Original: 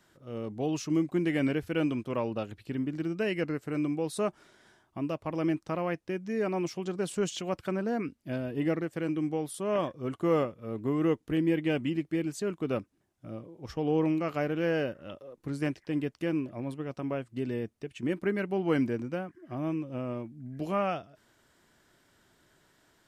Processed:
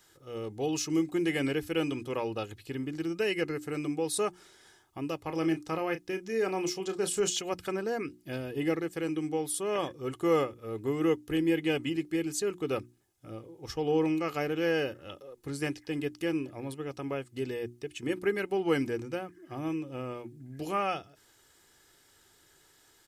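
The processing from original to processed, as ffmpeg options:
-filter_complex "[0:a]asettb=1/sr,asplit=3[a][b][c];[a]atrim=end=5.244[d];[b]atrim=start=5.24:end=7.37,asetpts=PTS-STARTPTS,afade=t=in:d=0.004:c=qsin,afade=t=out:st=2.126:d=0.004:c=qsin,asplit=2[e][f];[f]adelay=31,volume=-10dB[g];[e][g]amix=inputs=2:normalize=0,atrim=end_sample=93933[h];[c]atrim=start=7.366[i];[d][h]acrossfade=d=0.004:c1=hsin:c2=qsin[j];[j][i]acrossfade=d=0.004:c1=qsin:c2=hsin,highshelf=f=3.5k:g=11,bandreject=f=60:t=h:w=6,bandreject=f=120:t=h:w=6,bandreject=f=180:t=h:w=6,bandreject=f=240:t=h:w=6,bandreject=f=300:t=h:w=6,bandreject=f=360:t=h:w=6,aecho=1:1:2.4:0.48,volume=-1.5dB"

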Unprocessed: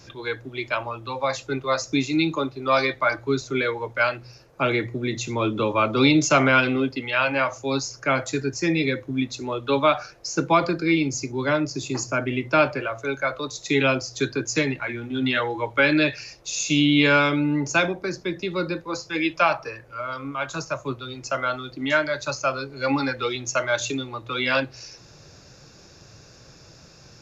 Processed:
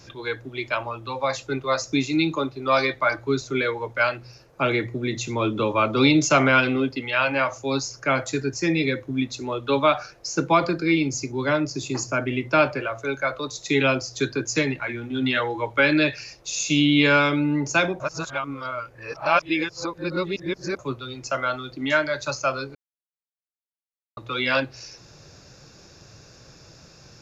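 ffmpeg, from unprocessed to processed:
-filter_complex "[0:a]asplit=5[a][b][c][d][e];[a]atrim=end=18.002[f];[b]atrim=start=17.998:end=20.792,asetpts=PTS-STARTPTS,areverse[g];[c]atrim=start=20.788:end=22.75,asetpts=PTS-STARTPTS,afade=t=out:st=1.958:d=0.004:c=hsin[h];[d]atrim=start=22.75:end=24.17,asetpts=PTS-STARTPTS,volume=0[i];[e]atrim=start=24.17,asetpts=PTS-STARTPTS,afade=t=in:d=0.004:c=hsin[j];[f][g]acrossfade=d=0.004:c1=hsin:c2=hsin[k];[h][i][j]concat=n=3:v=0:a=1[l];[k][l]acrossfade=d=0.004:c1=hsin:c2=hsin"

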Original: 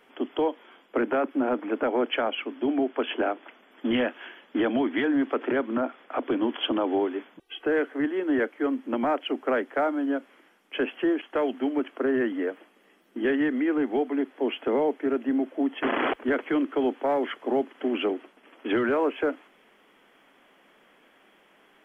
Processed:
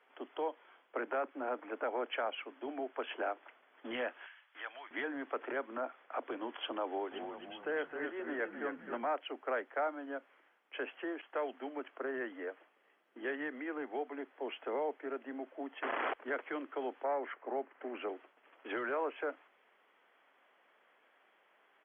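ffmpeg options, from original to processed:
-filter_complex "[0:a]asettb=1/sr,asplit=3[a][b][c];[a]atrim=end=4.264[d];[b]atrim=start=4.26:end=4.91,asetpts=PTS-STARTPTS,afade=t=in:d=0.004:c=qsin,afade=t=out:st=0.646:d=0.004:c=qsin,highpass=1.3k[e];[c]atrim=start=4.906[f];[d][e]acrossfade=d=0.004:c1=hsin:c2=qsin[g];[g][f]acrossfade=d=0.004:c1=qsin:c2=hsin,asplit=3[h][i][j];[h]afade=t=out:st=7.11:d=0.02[k];[i]asplit=7[l][m][n][o][p][q][r];[m]adelay=263,afreqshift=-38,volume=-5.5dB[s];[n]adelay=526,afreqshift=-76,volume=-11.9dB[t];[o]adelay=789,afreqshift=-114,volume=-18.3dB[u];[p]adelay=1052,afreqshift=-152,volume=-24.6dB[v];[q]adelay=1315,afreqshift=-190,volume=-31dB[w];[r]adelay=1578,afreqshift=-228,volume=-37.4dB[x];[l][s][t][u][v][w][x]amix=inputs=7:normalize=0,afade=t=in:st=7.11:d=0.02,afade=t=out:st=9.04:d=0.02[y];[j]afade=t=in:st=9.04:d=0.02[z];[k][y][z]amix=inputs=3:normalize=0,asettb=1/sr,asplit=3[aa][ab][ac];[aa]atrim=end=17.044[ad];[ab]atrim=start=17.04:end=18.08,asetpts=PTS-STARTPTS,afade=t=in:d=0.004:c=qsin,afade=t=out:st=1.036:d=0.004:c=qsin,lowpass=f=2.5k:w=0.5412,lowpass=f=2.5k:w=1.3066[ae];[ac]atrim=start=18.076[af];[ad][ae]acrossfade=d=0.004:c1=hsin:c2=qsin[ag];[ag][af]acrossfade=d=0.004:c1=qsin:c2=hsin,acrossover=split=450 2900:gain=0.141 1 0.2[ah][ai][aj];[ah][ai][aj]amix=inputs=3:normalize=0,volume=-7.5dB"

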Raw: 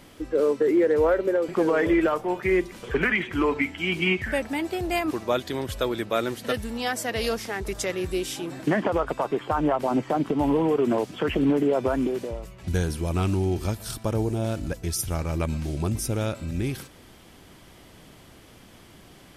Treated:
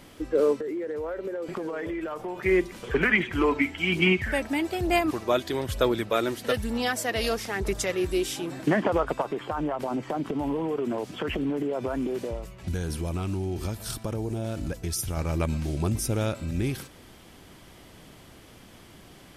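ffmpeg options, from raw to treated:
-filter_complex "[0:a]asettb=1/sr,asplit=3[a][b][c];[a]atrim=end=0.594[d];[b]atrim=start=0.59:end=2.46,asetpts=PTS-STARTPTS,afade=t=in:d=0.004:c=qsin,afade=t=out:st=1.866:d=0.004:c=qsin,acompressor=threshold=-29dB:ratio=8:attack=3.2:release=140:knee=1:detection=peak[e];[c]atrim=start=2.456[f];[d][e]acrossfade=d=0.004:c1=hsin:c2=qsin[g];[g][f]acrossfade=d=0.004:c1=qsin:c2=hsin,asettb=1/sr,asplit=3[h][i][j];[h]atrim=end=3.134[k];[i]atrim=start=3.13:end=8.31,asetpts=PTS-STARTPTS,afade=t=in:d=0.004:c=qsin,afade=t=out:st=5.176:d=0.004:c=qsin,aphaser=in_gain=1:out_gain=1:delay=3.2:decay=0.32:speed=1.1:type=sinusoidal[l];[j]atrim=start=8.306[m];[k][l]acrossfade=d=0.004:c1=hsin:c2=qsin[n];[n][m]acrossfade=d=0.004:c1=qsin:c2=hsin,asettb=1/sr,asplit=3[o][p][q];[o]atrim=end=9.214[r];[p]atrim=start=9.21:end=15.17,asetpts=PTS-STARTPTS,afade=t=in:d=0.004:c=qsin,afade=t=out:st=5.956:d=0.004:c=qsin,acompressor=threshold=-25dB:ratio=5:attack=3.2:release=140:knee=1:detection=peak[s];[q]atrim=start=15.166[t];[r][s]acrossfade=d=0.004:c1=hsin:c2=qsin[u];[u][t]acrossfade=d=0.004:c1=qsin:c2=hsin"

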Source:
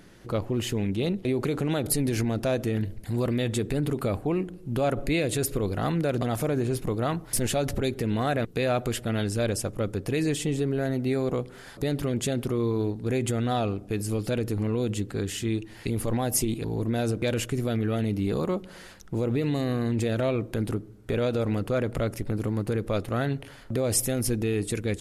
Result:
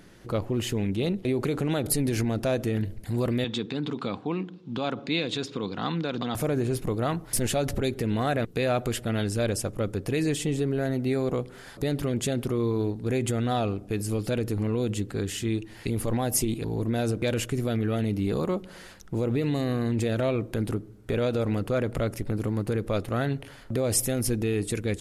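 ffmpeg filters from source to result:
-filter_complex "[0:a]asettb=1/sr,asplit=3[a][b][c];[a]atrim=end=3.444[d];[b]atrim=start=3.44:end=6.35,asetpts=PTS-STARTPTS,afade=t=in:d=0.004:c=qsin,afade=t=out:st=2.906:d=0.004:c=qsin,highpass=f=140:w=0.5412,highpass=f=140:w=1.3066,equalizer=f=140:t=q:w=4:g=-5,equalizer=f=380:t=q:w=4:g=-6,equalizer=f=610:t=q:w=4:g=-10,equalizer=f=1k:t=q:w=4:g=4,equalizer=f=1.9k:t=q:w=4:g=-4,equalizer=f=3.6k:t=q:w=4:g=8,lowpass=f=5.6k:w=0.5412,lowpass=f=5.6k:w=1.3066[e];[c]atrim=start=6.346[f];[d][e]acrossfade=d=0.004:c1=hsin:c2=qsin[g];[g][f]acrossfade=d=0.004:c1=qsin:c2=hsin"

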